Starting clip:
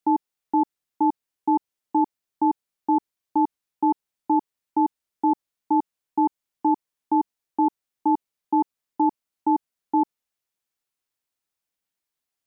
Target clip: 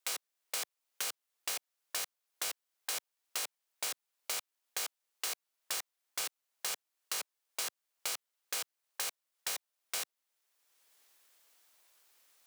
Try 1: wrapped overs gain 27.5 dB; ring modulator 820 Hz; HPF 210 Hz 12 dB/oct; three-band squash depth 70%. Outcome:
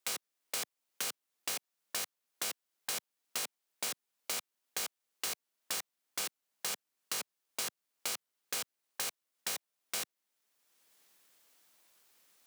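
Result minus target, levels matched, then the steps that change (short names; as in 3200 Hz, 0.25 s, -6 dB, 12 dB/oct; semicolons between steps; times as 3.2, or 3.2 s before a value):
250 Hz band +7.5 dB
change: HPF 440 Hz 12 dB/oct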